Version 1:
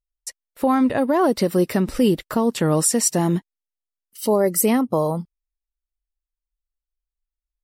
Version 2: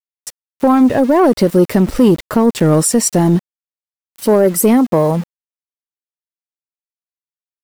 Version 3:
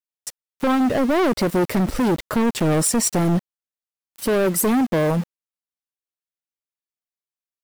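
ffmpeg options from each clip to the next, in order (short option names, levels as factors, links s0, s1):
-af "tiltshelf=f=1100:g=3,aeval=exprs='val(0)*gte(abs(val(0)),0.0188)':c=same,acontrast=71"
-af "volume=4.47,asoftclip=hard,volume=0.224,volume=0.708"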